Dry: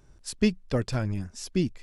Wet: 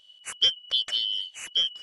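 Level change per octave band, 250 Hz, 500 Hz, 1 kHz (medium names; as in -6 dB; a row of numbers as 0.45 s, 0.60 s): under -30 dB, -19.0 dB, no reading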